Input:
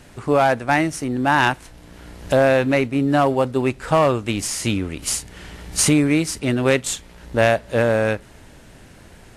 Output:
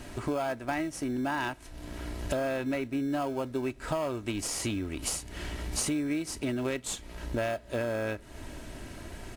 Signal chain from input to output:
comb filter 3.1 ms, depth 43%
in parallel at −12 dB: decimation without filtering 23×
on the sum: downward compressor 4 to 1, threshold −32 dBFS, peak gain reduction 18.5 dB

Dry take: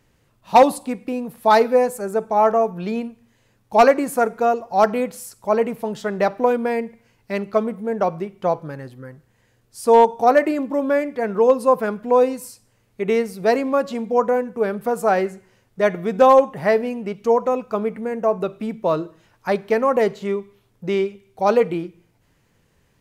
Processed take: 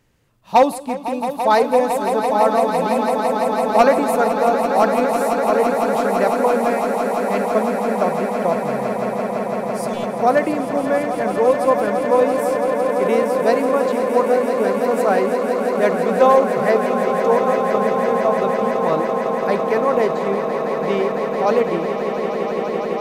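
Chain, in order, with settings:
0:06.61–0:07.52: floating-point word with a short mantissa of 8 bits
0:09.84–0:10.14: healed spectral selection 220–2,200 Hz
echo that builds up and dies away 168 ms, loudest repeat 8, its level −10 dB
level −1 dB

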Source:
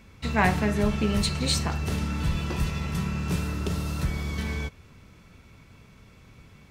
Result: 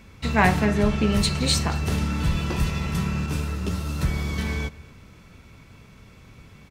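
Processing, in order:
0:00.65–0:01.12: high-shelf EQ 11,000 Hz −11.5 dB
slap from a distant wall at 39 metres, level −21 dB
0:03.26–0:04.01: string-ensemble chorus
level +3.5 dB

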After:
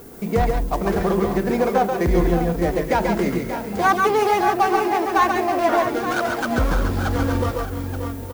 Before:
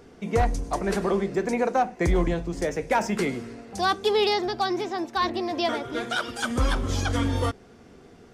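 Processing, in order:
running median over 15 samples
gain on a spectral selection 0:03.85–0:05.76, 520–3,000 Hz +6 dB
in parallel at +3 dB: downward compressor, threshold −32 dBFS, peak gain reduction 16 dB
on the sum: background noise violet −47 dBFS
multi-tap delay 135/141/580/615/875 ms −6.5/−6.5/−10.5/−12/−10.5 dB

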